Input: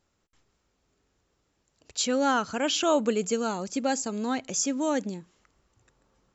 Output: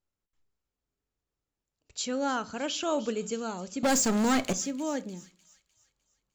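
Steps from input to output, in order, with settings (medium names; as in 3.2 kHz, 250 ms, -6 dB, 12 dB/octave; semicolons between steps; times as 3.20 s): gate -54 dBFS, range -12 dB; bass shelf 61 Hz +9.5 dB; 3.83–4.53 s: waveshaping leveller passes 5; feedback echo behind a high-pass 303 ms, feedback 45%, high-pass 3 kHz, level -14 dB; simulated room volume 310 m³, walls furnished, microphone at 0.3 m; trim -6 dB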